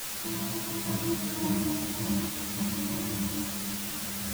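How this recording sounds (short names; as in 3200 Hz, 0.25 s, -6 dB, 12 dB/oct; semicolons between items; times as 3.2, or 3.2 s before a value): random-step tremolo, depth 75%; a quantiser's noise floor 6-bit, dither triangular; a shimmering, thickened sound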